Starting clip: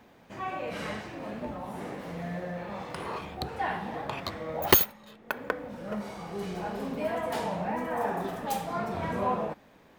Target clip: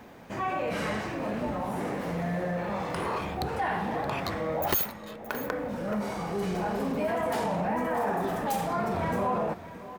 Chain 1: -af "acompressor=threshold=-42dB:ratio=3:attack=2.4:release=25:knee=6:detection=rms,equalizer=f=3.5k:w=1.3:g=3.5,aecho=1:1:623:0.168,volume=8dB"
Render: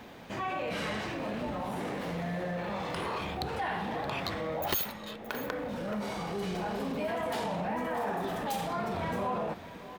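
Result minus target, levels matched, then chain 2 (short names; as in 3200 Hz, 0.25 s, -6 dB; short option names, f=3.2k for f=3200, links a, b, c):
4000 Hz band +5.5 dB; compressor: peak gain reduction +4.5 dB
-af "acompressor=threshold=-35dB:ratio=3:attack=2.4:release=25:knee=6:detection=rms,equalizer=f=3.5k:w=1.3:g=-3.5,aecho=1:1:623:0.168,volume=8dB"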